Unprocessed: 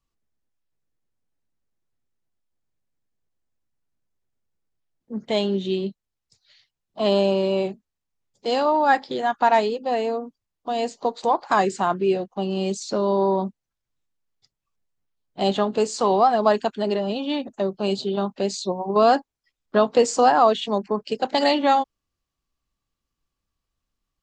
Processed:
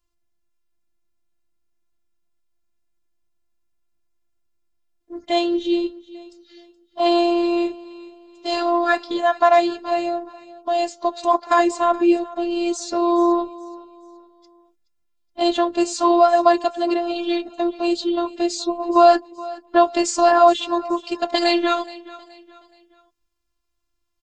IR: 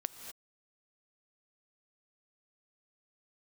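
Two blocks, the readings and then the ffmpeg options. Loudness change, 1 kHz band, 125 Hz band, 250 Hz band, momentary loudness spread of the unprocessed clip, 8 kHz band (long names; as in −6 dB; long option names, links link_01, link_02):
+2.5 dB, +2.0 dB, below −20 dB, +5.0 dB, 10 LU, +3.5 dB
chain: -af "afftfilt=real='hypot(re,im)*cos(PI*b)':imag='0':win_size=512:overlap=0.75,aecho=1:1:423|846|1269:0.112|0.0404|0.0145,volume=6.5dB"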